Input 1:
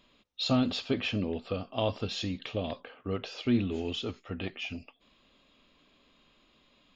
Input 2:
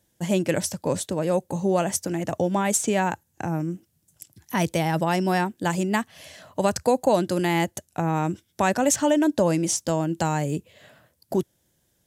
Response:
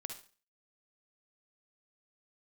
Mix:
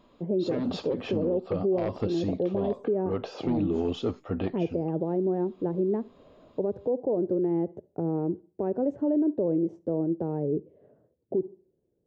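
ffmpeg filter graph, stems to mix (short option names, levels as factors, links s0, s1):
-filter_complex "[0:a]highshelf=f=1800:t=q:w=1.5:g=-11.5,aeval=exprs='0.188*sin(PI/2*2.24*val(0)/0.188)':c=same,equalizer=f=1400:w=1.3:g=-8,volume=0.891[s0];[1:a]lowpass=f=420:t=q:w=4.1,volume=0.473,asplit=3[s1][s2][s3];[s2]volume=0.282[s4];[s3]apad=whole_len=306680[s5];[s0][s5]sidechaincompress=threshold=0.0447:ratio=8:attack=9.3:release=344[s6];[2:a]atrim=start_sample=2205[s7];[s4][s7]afir=irnorm=-1:irlink=0[s8];[s6][s1][s8]amix=inputs=3:normalize=0,lowshelf=f=160:g=-5.5,alimiter=limit=0.119:level=0:latency=1:release=102"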